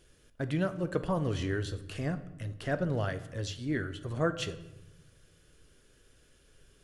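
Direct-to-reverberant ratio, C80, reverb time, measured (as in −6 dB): 10.0 dB, 16.5 dB, 0.95 s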